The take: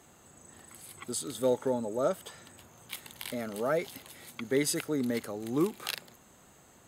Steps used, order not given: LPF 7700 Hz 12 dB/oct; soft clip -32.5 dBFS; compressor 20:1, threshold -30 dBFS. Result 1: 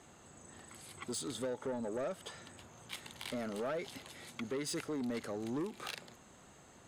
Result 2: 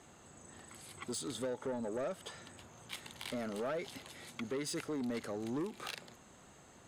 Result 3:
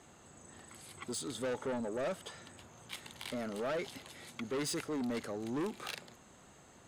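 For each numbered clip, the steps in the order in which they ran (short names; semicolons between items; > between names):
LPF > compressor > soft clip; compressor > LPF > soft clip; LPF > soft clip > compressor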